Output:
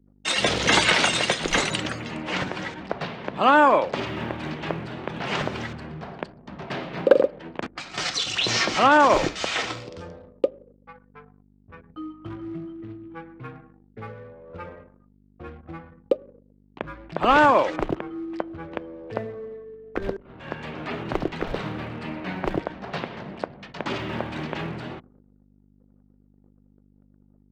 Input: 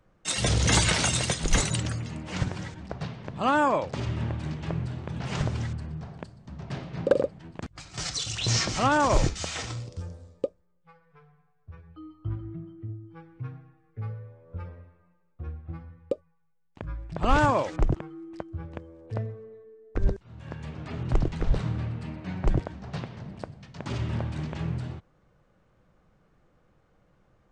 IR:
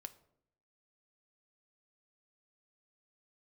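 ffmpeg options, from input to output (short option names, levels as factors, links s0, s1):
-filter_complex "[0:a]asplit=2[s0][s1];[s1]acompressor=threshold=0.0224:ratio=12,volume=0.794[s2];[s0][s2]amix=inputs=2:normalize=0,highshelf=f=3700:g=11,agate=range=0.0891:threshold=0.00141:ratio=16:detection=peak,asplit=2[s3][s4];[1:a]atrim=start_sample=2205,asetrate=30870,aresample=44100[s5];[s4][s5]afir=irnorm=-1:irlink=0,volume=0.668[s6];[s3][s6]amix=inputs=2:normalize=0,aeval=exprs='val(0)+0.00891*(sin(2*PI*50*n/s)+sin(2*PI*2*50*n/s)/2+sin(2*PI*3*50*n/s)/3+sin(2*PI*4*50*n/s)/4+sin(2*PI*5*50*n/s)/5)':c=same,acrusher=bits=7:mode=log:mix=0:aa=0.000001,acrossover=split=220 3500:gain=0.1 1 0.0794[s7][s8][s9];[s7][s8][s9]amix=inputs=3:normalize=0,anlmdn=0.00398,volume=1.26"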